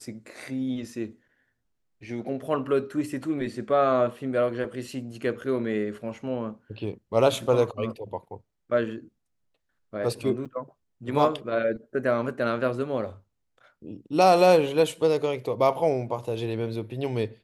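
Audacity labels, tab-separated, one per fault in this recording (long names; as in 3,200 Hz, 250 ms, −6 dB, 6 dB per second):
10.450000	10.460000	drop-out 6.3 ms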